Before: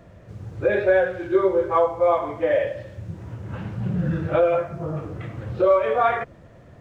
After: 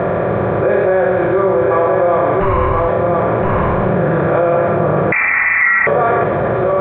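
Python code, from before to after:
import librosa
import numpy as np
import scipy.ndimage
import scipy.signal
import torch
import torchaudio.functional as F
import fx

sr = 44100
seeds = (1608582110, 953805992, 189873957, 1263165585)

y = fx.bin_compress(x, sr, power=0.4)
y = fx.highpass(y, sr, hz=140.0, slope=6)
y = fx.ring_mod(y, sr, carrier_hz=490.0, at=(2.4, 2.89))
y = fx.air_absorb(y, sr, metres=500.0)
y = y + 10.0 ** (-5.5 / 20.0) * np.pad(y, (int(1022 * sr / 1000.0), 0))[:len(y)]
y = fx.freq_invert(y, sr, carrier_hz=2500, at=(5.12, 5.87))
y = fx.env_flatten(y, sr, amount_pct=70)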